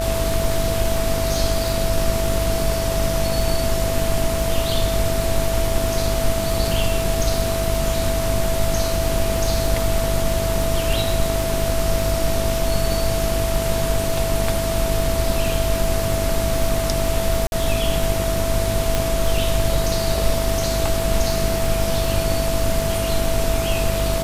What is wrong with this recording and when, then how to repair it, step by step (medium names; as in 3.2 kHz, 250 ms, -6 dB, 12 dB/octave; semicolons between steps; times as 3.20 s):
buzz 50 Hz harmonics 28 -25 dBFS
crackle 51 per s -24 dBFS
whine 660 Hz -23 dBFS
17.47–17.52 s: dropout 51 ms
18.95 s: pop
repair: de-click; de-hum 50 Hz, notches 28; band-stop 660 Hz, Q 30; interpolate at 17.47 s, 51 ms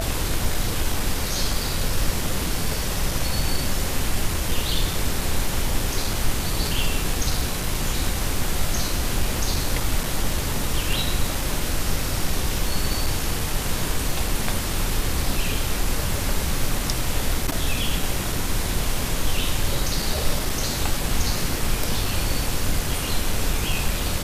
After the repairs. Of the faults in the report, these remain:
18.95 s: pop